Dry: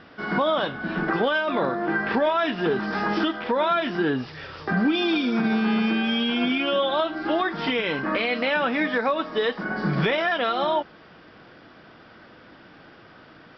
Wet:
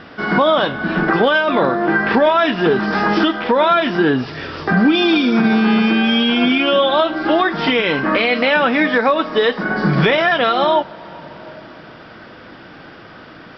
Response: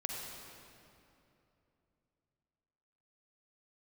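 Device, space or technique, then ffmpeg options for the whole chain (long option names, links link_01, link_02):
ducked reverb: -filter_complex "[0:a]asplit=3[link_01][link_02][link_03];[1:a]atrim=start_sample=2205[link_04];[link_02][link_04]afir=irnorm=-1:irlink=0[link_05];[link_03]apad=whole_len=598845[link_06];[link_05][link_06]sidechaincompress=threshold=-29dB:ratio=8:attack=16:release=708,volume=-11dB[link_07];[link_01][link_07]amix=inputs=2:normalize=0,volume=8dB"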